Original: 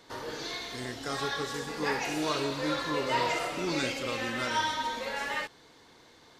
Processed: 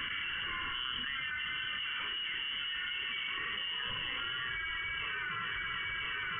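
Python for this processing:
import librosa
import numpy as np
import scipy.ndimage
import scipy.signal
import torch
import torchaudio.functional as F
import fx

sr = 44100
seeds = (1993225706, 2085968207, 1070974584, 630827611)

p1 = fx.delta_mod(x, sr, bps=32000, step_db=-45.0, at=(1.67, 3.38))
p2 = scipy.signal.sosfilt(scipy.signal.butter(2, 95.0, 'highpass', fs=sr, output='sos'), p1)
p3 = fx.fixed_phaser(p2, sr, hz=2500.0, stages=6)
p4 = fx.wow_flutter(p3, sr, seeds[0], rate_hz=2.1, depth_cents=20.0)
p5 = p4 + fx.echo_heads(p4, sr, ms=337, heads='first and third', feedback_pct=55, wet_db=-12.5, dry=0)
p6 = fx.freq_invert(p5, sr, carrier_hz=3200)
p7 = fx.env_flatten(p6, sr, amount_pct=100)
y = p7 * 10.0 ** (-7.0 / 20.0)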